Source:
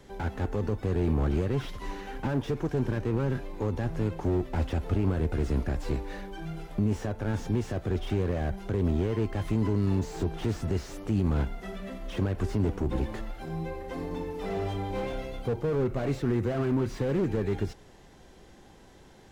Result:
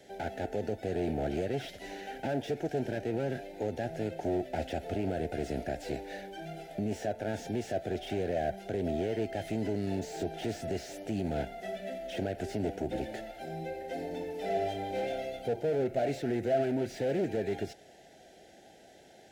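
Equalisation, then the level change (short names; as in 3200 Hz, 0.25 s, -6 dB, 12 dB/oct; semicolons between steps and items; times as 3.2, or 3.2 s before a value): HPF 390 Hz 6 dB/oct; Butterworth band-stop 1100 Hz, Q 1.5; bell 670 Hz +11 dB 0.36 oct; 0.0 dB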